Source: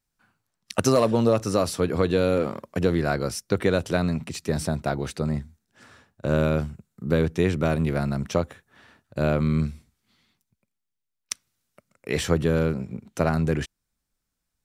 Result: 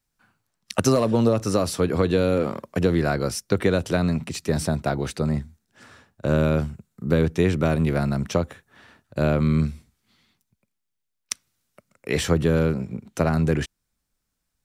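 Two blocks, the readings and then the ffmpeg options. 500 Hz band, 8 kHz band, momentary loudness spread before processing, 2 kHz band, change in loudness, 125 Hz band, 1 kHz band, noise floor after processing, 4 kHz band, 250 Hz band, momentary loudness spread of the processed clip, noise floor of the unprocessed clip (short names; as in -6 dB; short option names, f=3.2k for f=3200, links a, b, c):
+1.0 dB, +2.0 dB, 12 LU, +1.0 dB, +1.5 dB, +2.5 dB, +0.5 dB, -79 dBFS, +1.5 dB, +2.0 dB, 11 LU, -82 dBFS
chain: -filter_complex "[0:a]acrossover=split=330[a][b];[b]acompressor=threshold=-22dB:ratio=6[c];[a][c]amix=inputs=2:normalize=0,volume=2.5dB"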